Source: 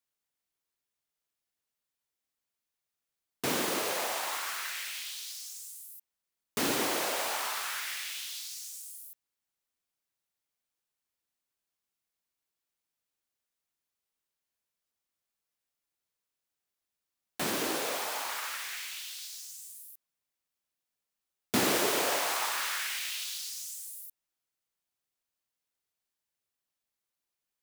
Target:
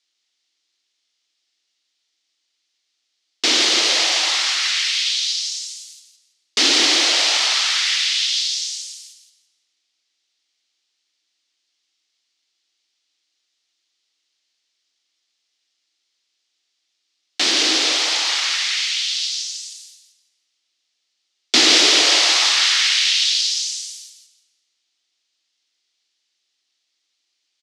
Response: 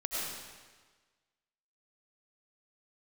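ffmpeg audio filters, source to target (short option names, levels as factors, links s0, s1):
-filter_complex "[0:a]highpass=f=240:w=0.5412,highpass=f=240:w=1.3066,equalizer=f=320:t=q:w=4:g=8,equalizer=f=750:t=q:w=4:g=3,equalizer=f=1300:t=q:w=4:g=7,equalizer=f=2500:t=q:w=4:g=-4,lowpass=f=5400:w=0.5412,lowpass=f=5400:w=1.3066,aexciter=amount=8.3:drive=4.6:freq=2000,aecho=1:1:167|334|501:0.398|0.0916|0.0211,asplit=2[s0][s1];[1:a]atrim=start_sample=2205[s2];[s1][s2]afir=irnorm=-1:irlink=0,volume=0.0841[s3];[s0][s3]amix=inputs=2:normalize=0,volume=1.33"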